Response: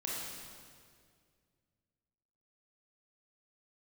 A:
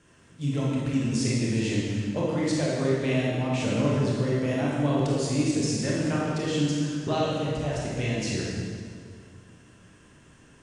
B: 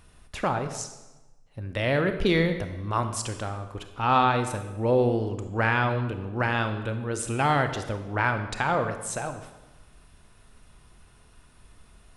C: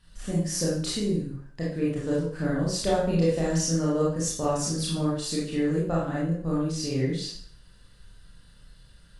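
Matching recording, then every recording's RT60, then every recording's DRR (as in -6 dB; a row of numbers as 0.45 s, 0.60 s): A; 2.1 s, 1.1 s, 0.55 s; -5.0 dB, 8.0 dB, -7.0 dB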